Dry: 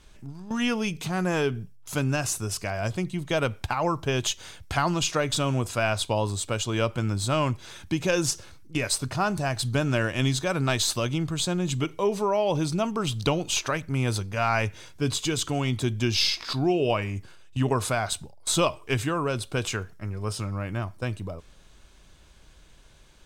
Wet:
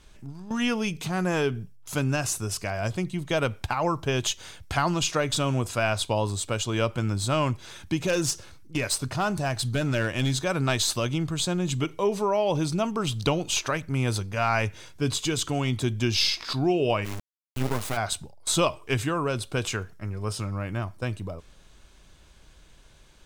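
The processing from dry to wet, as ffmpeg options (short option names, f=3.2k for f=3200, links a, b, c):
-filter_complex "[0:a]asettb=1/sr,asplit=3[a][b][c];[a]atrim=end=7.964[d];[b]atrim=start=7.96:end=10.36,asetpts=PTS-STARTPTS,afade=t=in:d=0.004:c=qsin,afade=t=out:st=2.396:d=0.004:c=qsin,volume=19.5dB,asoftclip=hard,volume=-19.5dB[e];[c]atrim=start=10.356[f];[d][e]acrossfade=d=0.004:c1=hsin:c2=qsin[g];[g][f]acrossfade=d=0.004:c1=qsin:c2=hsin,asplit=3[h][i][j];[h]afade=t=out:st=17.04:d=0.02[k];[i]acrusher=bits=3:dc=4:mix=0:aa=0.000001,afade=t=in:st=17.04:d=0.02,afade=t=out:st=17.96:d=0.02[l];[j]afade=t=in:st=17.96:d=0.02[m];[k][l][m]amix=inputs=3:normalize=0"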